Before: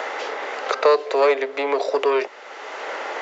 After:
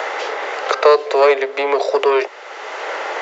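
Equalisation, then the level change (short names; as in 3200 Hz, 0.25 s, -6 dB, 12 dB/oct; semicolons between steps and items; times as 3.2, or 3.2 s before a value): HPF 320 Hz 24 dB/oct; +5.0 dB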